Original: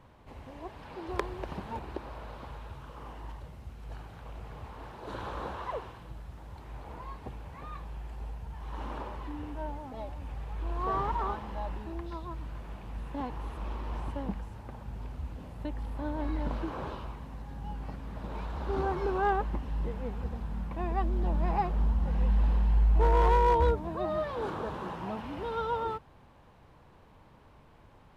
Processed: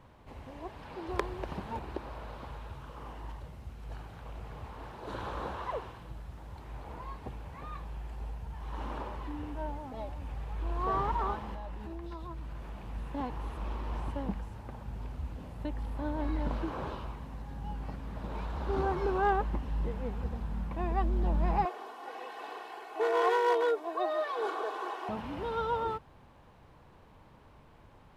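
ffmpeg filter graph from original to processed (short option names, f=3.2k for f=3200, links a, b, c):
-filter_complex "[0:a]asettb=1/sr,asplit=3[a][b][c];[a]atrim=end=11.544[d];[b]atrim=start=11.54:end=12.83,asetpts=PTS-STARTPTS,afade=t=in:d=0.004:c=qsin,afade=t=out:st=1.286:d=0.004:c=qsin,asplit=2[e][f];[f]adelay=15,volume=-12dB[g];[e][g]amix=inputs=2:normalize=0,atrim=end_sample=56889,acompressor=threshold=-37dB:ratio=5:attack=3.2:release=140:knee=1:detection=peak[h];[c]atrim=start=12.826[i];[d][h]acrossfade=d=0.004:c1=hsin:c2=qsin[j];[j][i]acrossfade=d=0.004:c1=qsin:c2=hsin,asettb=1/sr,asplit=3[k][l][m];[k]atrim=end=21.654[n];[l]atrim=start=21.65:end=25.09,asetpts=PTS-STARTPTS,afade=t=in:d=0.004:c=qsin,afade=t=out:st=3.436:d=0.004:c=qsin,highpass=f=420:w=0.5412,highpass=f=420:w=1.3066,aecho=1:1:2.7:0.92,atrim=end_sample=151704[o];[m]atrim=start=25.086[p];[n][o]acrossfade=d=0.004:c1=hsin:c2=qsin[q];[q][p]acrossfade=d=0.004:c1=qsin:c2=hsin"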